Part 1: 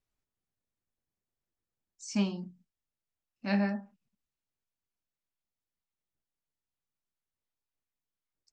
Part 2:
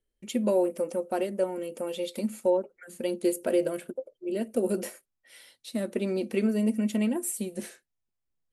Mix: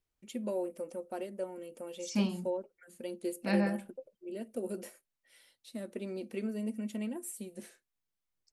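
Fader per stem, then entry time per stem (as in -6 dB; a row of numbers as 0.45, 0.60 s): -1.0, -10.5 dB; 0.00, 0.00 s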